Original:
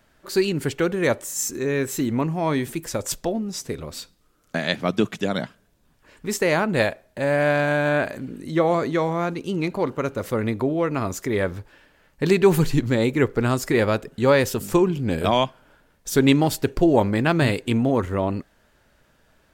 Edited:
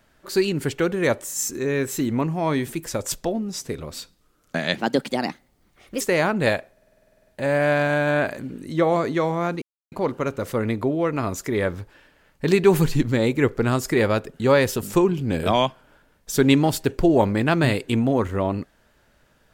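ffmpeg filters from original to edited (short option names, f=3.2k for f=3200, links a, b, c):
-filter_complex "[0:a]asplit=16[a][b][c][d][e][f][g][h][i][j][k][l][m][n][o][p];[a]atrim=end=4.784[q];[b]atrim=start=4.78:end=6.34,asetpts=PTS-STARTPTS,asetrate=56007,aresample=44100,atrim=end_sample=54170,asetpts=PTS-STARTPTS[r];[c]atrim=start=6.336:end=7.102[s];[d]atrim=start=7.048:end=7.102[t];[e]atrim=start=7.048:end=7.102[u];[f]atrim=start=7.048:end=7.102[v];[g]atrim=start=7.048:end=7.102[w];[h]atrim=start=7.048:end=7.102[x];[i]atrim=start=7.048:end=7.102[y];[j]atrim=start=7.048:end=7.102[z];[k]atrim=start=7.048:end=7.102[aa];[l]atrim=start=7.048:end=7.102[ab];[m]atrim=start=7.048:end=7.102[ac];[n]atrim=start=7.048:end=9.4,asetpts=PTS-STARTPTS,afade=t=out:st=2.348:d=0.004:c=hsin[ad];[o]atrim=start=9.4:end=9.7,asetpts=PTS-STARTPTS,volume=0[ae];[p]atrim=start=9.7,asetpts=PTS-STARTPTS,afade=t=in:d=0.004:c=hsin[af];[q][r]acrossfade=d=0.004:c1=hsin:c2=hsin[ag];[ag][s]acrossfade=d=0.004:c1=hsin:c2=hsin[ah];[ah][t]acrossfade=d=0.004:c1=hsin:c2=hsin[ai];[ai][u]acrossfade=d=0.004:c1=hsin:c2=hsin[aj];[aj][v]acrossfade=d=0.004:c1=hsin:c2=hsin[ak];[ak][w]acrossfade=d=0.004:c1=hsin:c2=hsin[al];[al][x]acrossfade=d=0.004:c1=hsin:c2=hsin[am];[am][y]acrossfade=d=0.004:c1=hsin:c2=hsin[an];[an][z]acrossfade=d=0.004:c1=hsin:c2=hsin[ao];[ao][aa]acrossfade=d=0.004:c1=hsin:c2=hsin[ap];[ap][ab]acrossfade=d=0.004:c1=hsin:c2=hsin[aq];[aq][ac]acrossfade=d=0.004:c1=hsin:c2=hsin[ar];[ad][ae][af]concat=n=3:v=0:a=1[as];[ar][as]acrossfade=d=0.004:c1=hsin:c2=hsin"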